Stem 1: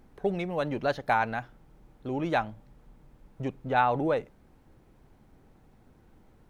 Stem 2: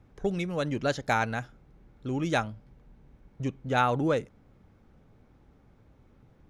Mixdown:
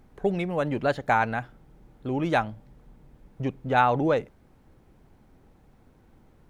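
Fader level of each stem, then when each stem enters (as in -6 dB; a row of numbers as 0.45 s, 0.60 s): +0.5 dB, -6.5 dB; 0.00 s, 0.00 s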